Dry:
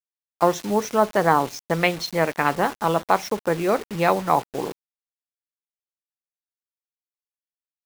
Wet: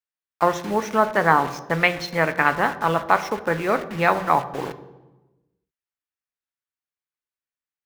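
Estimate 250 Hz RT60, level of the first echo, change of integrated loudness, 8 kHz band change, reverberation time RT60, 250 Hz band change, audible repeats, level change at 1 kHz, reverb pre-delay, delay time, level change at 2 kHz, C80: 1.5 s, no echo audible, +1.0 dB, −4.5 dB, 1.1 s, −1.5 dB, no echo audible, +1.5 dB, 3 ms, no echo audible, +5.0 dB, 16.5 dB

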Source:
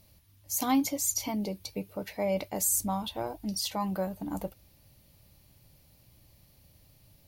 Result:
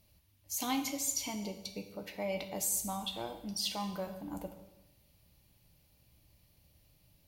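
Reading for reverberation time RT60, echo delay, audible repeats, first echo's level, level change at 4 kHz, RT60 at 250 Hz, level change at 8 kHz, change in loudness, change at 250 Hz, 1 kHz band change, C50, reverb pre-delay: 1.0 s, no echo audible, no echo audible, no echo audible, −0.5 dB, 0.95 s, −4.5 dB, −5.5 dB, −8.0 dB, −6.0 dB, 9.5 dB, 4 ms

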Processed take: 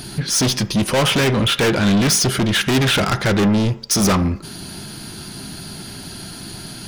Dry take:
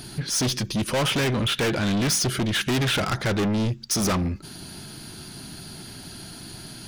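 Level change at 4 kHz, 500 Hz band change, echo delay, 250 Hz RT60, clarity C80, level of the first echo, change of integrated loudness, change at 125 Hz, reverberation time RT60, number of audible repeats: +6.5 dB, +7.0 dB, no echo audible, 0.40 s, 19.0 dB, no echo audible, +7.0 dB, +6.5 dB, 0.60 s, no echo audible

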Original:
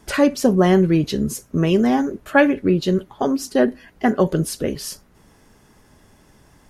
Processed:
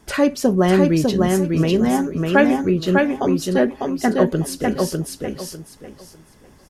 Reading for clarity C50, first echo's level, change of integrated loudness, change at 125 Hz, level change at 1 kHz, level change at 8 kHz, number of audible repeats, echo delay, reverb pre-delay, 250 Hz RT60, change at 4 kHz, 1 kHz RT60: no reverb audible, −3.0 dB, +0.5 dB, +1.0 dB, +1.0 dB, +1.0 dB, 3, 600 ms, no reverb audible, no reverb audible, +1.0 dB, no reverb audible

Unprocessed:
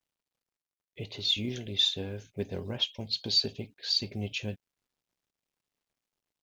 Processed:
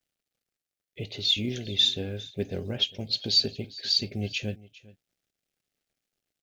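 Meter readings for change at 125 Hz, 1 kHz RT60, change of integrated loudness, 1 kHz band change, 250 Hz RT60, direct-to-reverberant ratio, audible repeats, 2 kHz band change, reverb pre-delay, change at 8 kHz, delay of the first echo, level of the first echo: +3.5 dB, no reverb audible, +3.5 dB, 0.0 dB, no reverb audible, no reverb audible, 1, +3.0 dB, no reverb audible, +3.5 dB, 402 ms, −20.5 dB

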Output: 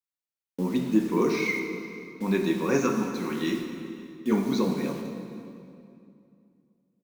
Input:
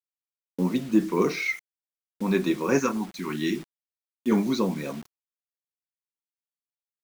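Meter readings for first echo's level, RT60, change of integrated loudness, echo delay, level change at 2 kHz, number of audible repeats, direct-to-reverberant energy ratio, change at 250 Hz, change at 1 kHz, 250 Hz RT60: −22.0 dB, 2.5 s, −1.0 dB, 514 ms, −0.5 dB, 1, 3.5 dB, −0.5 dB, −1.0 dB, 3.0 s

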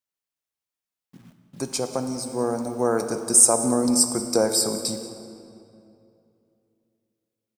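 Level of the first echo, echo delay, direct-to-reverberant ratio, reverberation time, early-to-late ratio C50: −17.0 dB, 184 ms, 6.5 dB, 2.6 s, 8.0 dB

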